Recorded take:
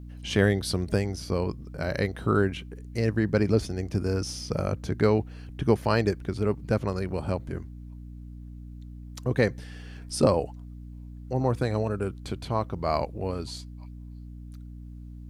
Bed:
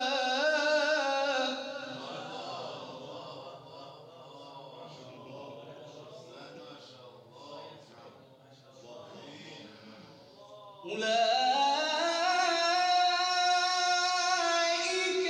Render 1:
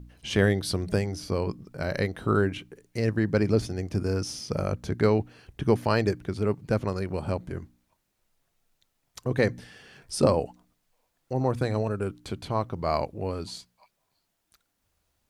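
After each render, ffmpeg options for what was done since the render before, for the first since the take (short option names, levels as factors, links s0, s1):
-af "bandreject=f=60:t=h:w=4,bandreject=f=120:t=h:w=4,bandreject=f=180:t=h:w=4,bandreject=f=240:t=h:w=4,bandreject=f=300:t=h:w=4"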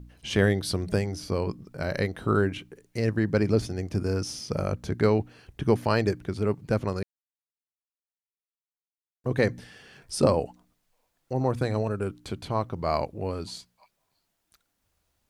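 -filter_complex "[0:a]asplit=3[s0][s1][s2];[s0]atrim=end=7.03,asetpts=PTS-STARTPTS,afade=t=out:st=7.026:d=0.004:c=hsin[s3];[s1]atrim=start=7.03:end=9.24,asetpts=PTS-STARTPTS,volume=0[s4];[s2]atrim=start=9.24,asetpts=PTS-STARTPTS,afade=t=in:d=0.004:c=hsin[s5];[s3][s4][s5]concat=n=3:v=0:a=1"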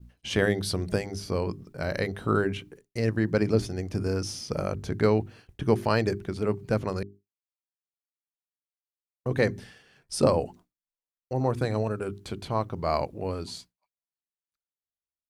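-af "bandreject=f=50:t=h:w=6,bandreject=f=100:t=h:w=6,bandreject=f=150:t=h:w=6,bandreject=f=200:t=h:w=6,bandreject=f=250:t=h:w=6,bandreject=f=300:t=h:w=6,bandreject=f=350:t=h:w=6,bandreject=f=400:t=h:w=6,agate=range=0.0224:threshold=0.00631:ratio=3:detection=peak"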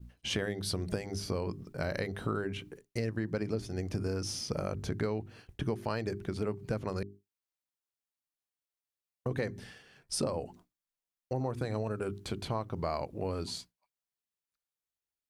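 -af "acompressor=threshold=0.0316:ratio=6"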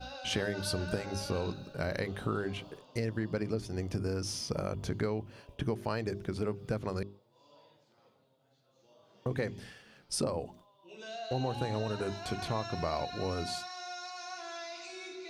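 -filter_complex "[1:a]volume=0.188[s0];[0:a][s0]amix=inputs=2:normalize=0"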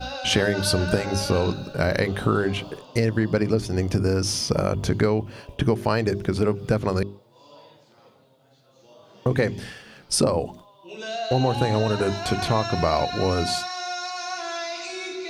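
-af "volume=3.98"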